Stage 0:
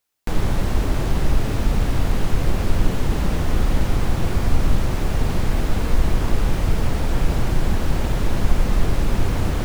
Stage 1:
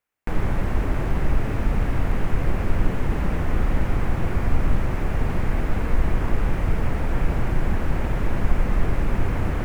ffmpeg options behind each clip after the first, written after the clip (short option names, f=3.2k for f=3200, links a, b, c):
-af "highshelf=f=2.9k:t=q:w=1.5:g=-8.5,volume=-2.5dB"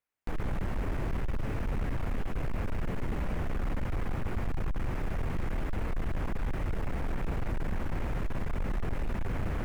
-af "volume=19.5dB,asoftclip=hard,volume=-19.5dB,volume=-7dB"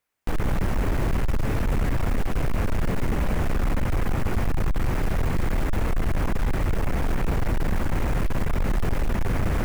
-af "acrusher=bits=5:mode=log:mix=0:aa=0.000001,volume=9dB"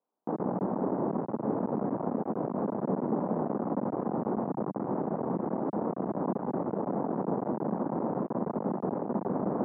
-af "asuperpass=centerf=430:order=8:qfactor=0.52,volume=1.5dB"